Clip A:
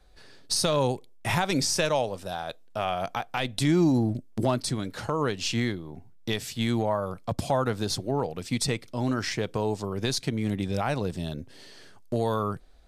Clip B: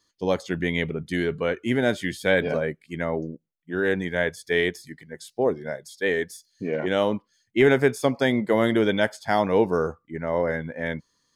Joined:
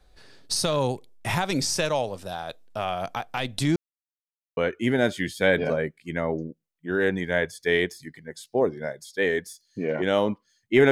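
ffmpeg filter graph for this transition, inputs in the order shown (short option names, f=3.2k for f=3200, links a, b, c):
-filter_complex "[0:a]apad=whole_dur=10.91,atrim=end=10.91,asplit=2[a][b];[a]atrim=end=3.76,asetpts=PTS-STARTPTS,afade=t=out:st=3.756:d=0.004:c=hsin[c];[b]atrim=start=3.76:end=4.57,asetpts=PTS-STARTPTS,volume=0[d];[1:a]atrim=start=1.41:end=7.75,asetpts=PTS-STARTPTS,afade=t=in:d=0.004:c=hsin[e];[c][d][e]concat=n=3:v=0:a=1"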